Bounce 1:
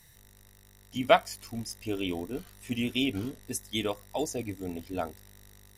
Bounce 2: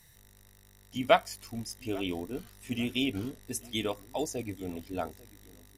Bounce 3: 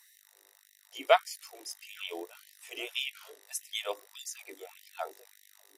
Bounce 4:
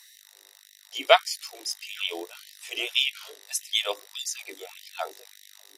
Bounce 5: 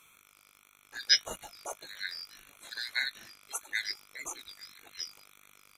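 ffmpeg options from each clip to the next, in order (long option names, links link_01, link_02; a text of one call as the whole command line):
ffmpeg -i in.wav -filter_complex "[0:a]asplit=2[link_01][link_02];[link_02]adelay=843,lowpass=frequency=2000:poles=1,volume=-21dB,asplit=2[link_03][link_04];[link_04]adelay=843,lowpass=frequency=2000:poles=1,volume=0.34,asplit=2[link_05][link_06];[link_06]adelay=843,lowpass=frequency=2000:poles=1,volume=0.34[link_07];[link_01][link_03][link_05][link_07]amix=inputs=4:normalize=0,volume=-1.5dB" out.wav
ffmpeg -i in.wav -af "afftfilt=real='re*gte(b*sr/1024,290*pow(1800/290,0.5+0.5*sin(2*PI*1.7*pts/sr)))':imag='im*gte(b*sr/1024,290*pow(1800/290,0.5+0.5*sin(2*PI*1.7*pts/sr)))':win_size=1024:overlap=0.75" out.wav
ffmpeg -i in.wav -af "equalizer=frequency=4200:width=0.85:gain=9,volume=4dB" out.wav
ffmpeg -i in.wav -af "afftfilt=real='real(if(lt(b,272),68*(eq(floor(b/68),0)*3+eq(floor(b/68),1)*2+eq(floor(b/68),2)*1+eq(floor(b/68),3)*0)+mod(b,68),b),0)':imag='imag(if(lt(b,272),68*(eq(floor(b/68),0)*3+eq(floor(b/68),1)*2+eq(floor(b/68),2)*1+eq(floor(b/68),3)*0)+mod(b,68),b),0)':win_size=2048:overlap=0.75,volume=-7.5dB" out.wav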